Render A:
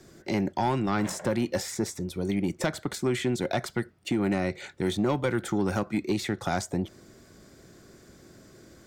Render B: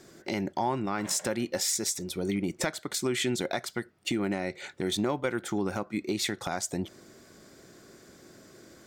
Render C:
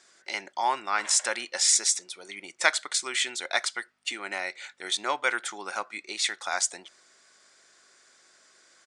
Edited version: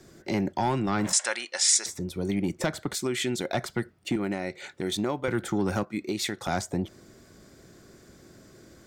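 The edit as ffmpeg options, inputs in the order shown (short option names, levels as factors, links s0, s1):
-filter_complex "[1:a]asplit=3[s0][s1][s2];[0:a]asplit=5[s3][s4][s5][s6][s7];[s3]atrim=end=1.132[s8];[2:a]atrim=start=1.128:end=1.862[s9];[s4]atrim=start=1.858:end=2.952[s10];[s0]atrim=start=2.948:end=3.542[s11];[s5]atrim=start=3.538:end=4.162[s12];[s1]atrim=start=4.158:end=5.282[s13];[s6]atrim=start=5.278:end=5.852[s14];[s2]atrim=start=5.848:end=6.482[s15];[s7]atrim=start=6.478[s16];[s8][s9]acrossfade=d=0.004:c1=hsin:c2=hsin[s17];[s17][s10]acrossfade=d=0.004:c1=hsin:c2=hsin[s18];[s18][s11]acrossfade=d=0.004:c1=hsin:c2=hsin[s19];[s19][s12]acrossfade=d=0.004:c1=hsin:c2=hsin[s20];[s20][s13]acrossfade=d=0.004:c1=hsin:c2=hsin[s21];[s21][s14]acrossfade=d=0.004:c1=hsin:c2=hsin[s22];[s22][s15]acrossfade=d=0.004:c1=hsin:c2=hsin[s23];[s23][s16]acrossfade=d=0.004:c1=hsin:c2=hsin"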